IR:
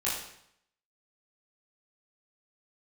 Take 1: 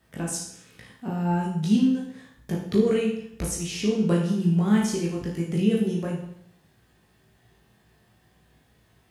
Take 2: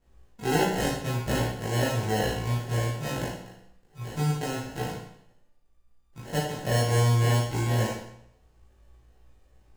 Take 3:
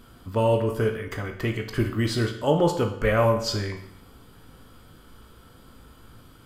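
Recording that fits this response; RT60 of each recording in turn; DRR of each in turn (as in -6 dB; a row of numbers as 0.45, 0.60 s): 2; 0.70, 0.70, 0.70 s; -3.5, -8.5, 3.5 dB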